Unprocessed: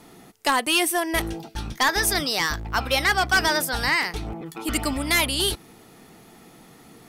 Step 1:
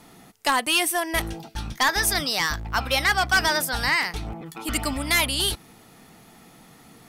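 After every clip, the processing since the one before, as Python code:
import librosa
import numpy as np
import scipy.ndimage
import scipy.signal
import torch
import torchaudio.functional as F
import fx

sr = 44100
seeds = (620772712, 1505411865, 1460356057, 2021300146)

y = fx.peak_eq(x, sr, hz=380.0, db=-5.5, octaves=0.78)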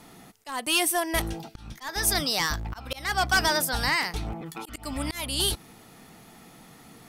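y = fx.dynamic_eq(x, sr, hz=2000.0, q=0.85, threshold_db=-32.0, ratio=4.0, max_db=-4)
y = fx.auto_swell(y, sr, attack_ms=294.0)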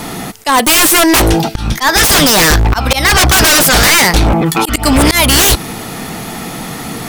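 y = fx.fold_sine(x, sr, drive_db=16, ceiling_db=-11.5)
y = F.gain(torch.from_numpy(y), 7.0).numpy()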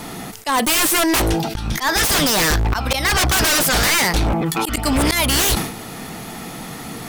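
y = fx.sustainer(x, sr, db_per_s=82.0)
y = F.gain(torch.from_numpy(y), -8.5).numpy()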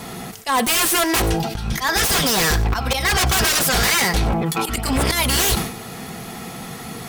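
y = fx.notch_comb(x, sr, f0_hz=300.0)
y = y + 10.0 ** (-18.0 / 20.0) * np.pad(y, (int(95 * sr / 1000.0), 0))[:len(y)]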